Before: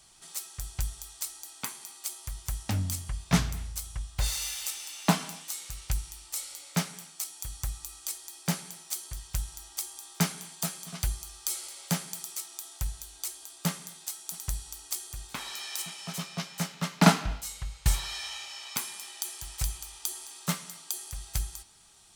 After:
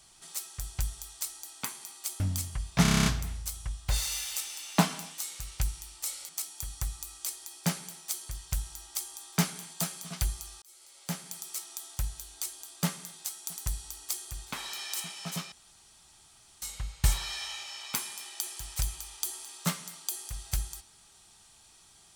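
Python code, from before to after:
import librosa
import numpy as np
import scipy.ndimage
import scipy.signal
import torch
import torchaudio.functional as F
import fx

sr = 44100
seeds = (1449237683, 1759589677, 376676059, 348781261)

y = fx.edit(x, sr, fx.cut(start_s=2.2, length_s=0.54),
    fx.stutter(start_s=3.36, slice_s=0.03, count=9),
    fx.cut(start_s=6.59, length_s=0.52),
    fx.fade_in_span(start_s=11.44, length_s=1.01),
    fx.room_tone_fill(start_s=16.34, length_s=1.1), tone=tone)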